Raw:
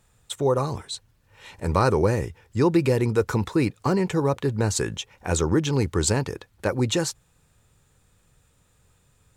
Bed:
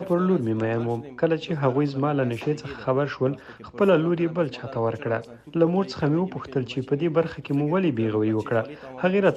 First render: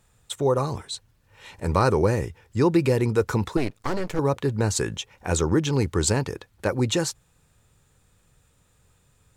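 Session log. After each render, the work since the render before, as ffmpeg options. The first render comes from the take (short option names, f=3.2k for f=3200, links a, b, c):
-filter_complex "[0:a]asettb=1/sr,asplit=3[a][b][c];[a]atrim=end=3.574[d];[b]atrim=start=3.57:end=4.19,asetpts=PTS-STARTPTS,afade=t=in:d=0.004:c=qsin,afade=t=out:st=0.616:d=0.004:c=qsin,aeval=exprs='max(val(0),0)':c=same[e];[c]atrim=start=4.186[f];[d][e]acrossfade=d=0.004:c1=hsin:c2=qsin[g];[g][f]acrossfade=d=0.004:c1=qsin:c2=hsin"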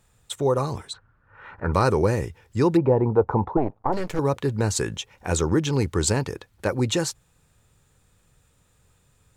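-filter_complex "[0:a]asplit=3[a][b][c];[a]afade=t=out:st=0.92:d=0.02[d];[b]lowpass=f=1.4k:t=q:w=5.4,afade=t=in:st=0.92:d=0.02,afade=t=out:st=1.72:d=0.02[e];[c]afade=t=in:st=1.72:d=0.02[f];[d][e][f]amix=inputs=3:normalize=0,asplit=3[g][h][i];[g]afade=t=out:st=2.76:d=0.02[j];[h]lowpass=f=840:t=q:w=3.6,afade=t=in:st=2.76:d=0.02,afade=t=out:st=3.92:d=0.02[k];[i]afade=t=in:st=3.92:d=0.02[l];[j][k][l]amix=inputs=3:normalize=0"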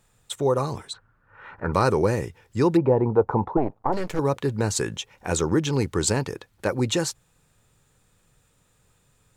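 -af "equalizer=f=66:t=o:w=0.91:g=-8"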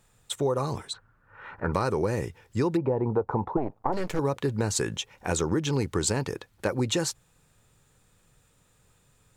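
-af "acompressor=threshold=-22dB:ratio=6"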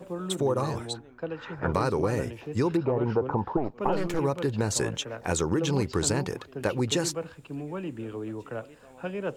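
-filter_complex "[1:a]volume=-12.5dB[a];[0:a][a]amix=inputs=2:normalize=0"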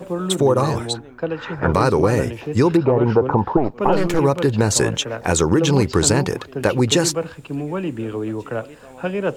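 -af "volume=10dB,alimiter=limit=-3dB:level=0:latency=1"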